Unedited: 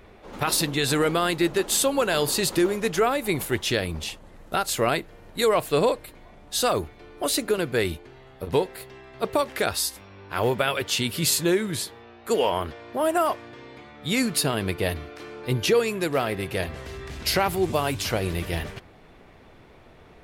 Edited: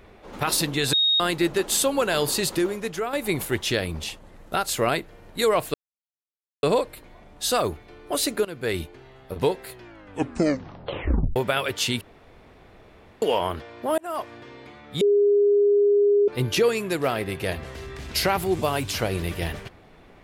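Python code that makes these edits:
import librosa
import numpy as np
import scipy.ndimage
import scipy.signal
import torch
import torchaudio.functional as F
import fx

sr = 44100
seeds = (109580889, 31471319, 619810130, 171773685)

y = fx.edit(x, sr, fx.bleep(start_s=0.93, length_s=0.27, hz=3740.0, db=-17.0),
    fx.fade_out_to(start_s=2.33, length_s=0.8, floor_db=-8.5),
    fx.insert_silence(at_s=5.74, length_s=0.89),
    fx.fade_in_from(start_s=7.56, length_s=0.36, floor_db=-14.5),
    fx.tape_stop(start_s=8.79, length_s=1.68),
    fx.room_tone_fill(start_s=11.12, length_s=1.21),
    fx.fade_in_span(start_s=13.09, length_s=0.35),
    fx.bleep(start_s=14.12, length_s=1.27, hz=408.0, db=-15.0), tone=tone)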